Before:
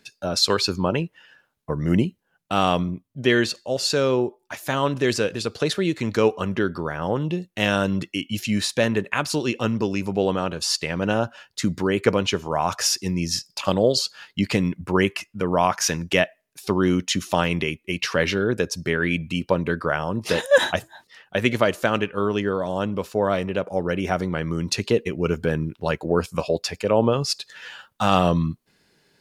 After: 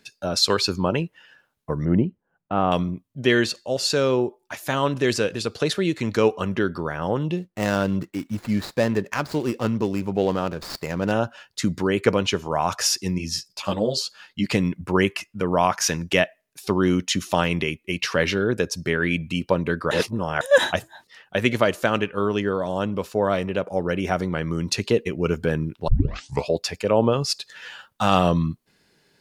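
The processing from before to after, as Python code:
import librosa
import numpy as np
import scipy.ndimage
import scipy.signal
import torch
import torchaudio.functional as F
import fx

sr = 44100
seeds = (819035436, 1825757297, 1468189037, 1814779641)

y = fx.lowpass(x, sr, hz=1300.0, slope=12, at=(1.85, 2.72))
y = fx.median_filter(y, sr, points=15, at=(7.37, 11.12))
y = fx.ensemble(y, sr, at=(13.18, 14.46))
y = fx.edit(y, sr, fx.reverse_span(start_s=19.91, length_s=0.5),
    fx.tape_start(start_s=25.88, length_s=0.59), tone=tone)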